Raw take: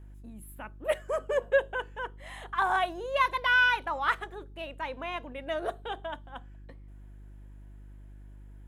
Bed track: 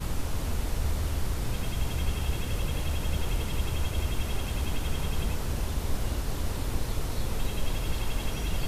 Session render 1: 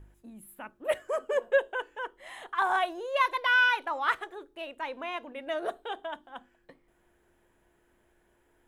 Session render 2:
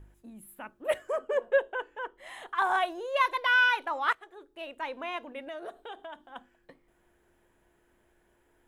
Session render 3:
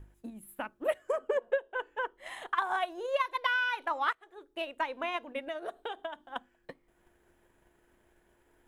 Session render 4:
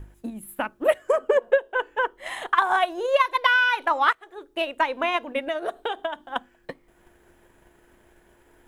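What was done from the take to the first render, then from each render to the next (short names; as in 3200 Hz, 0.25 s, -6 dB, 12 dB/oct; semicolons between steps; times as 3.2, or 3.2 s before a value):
de-hum 50 Hz, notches 6
1.12–2.18 high shelf 3900 Hz -9.5 dB; 4.13–4.73 fade in, from -17.5 dB; 5.48–6.36 compressor 2:1, threshold -43 dBFS
transient shaper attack +8 dB, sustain -3 dB; compressor 5:1, threshold -27 dBFS, peak gain reduction 14 dB
gain +10 dB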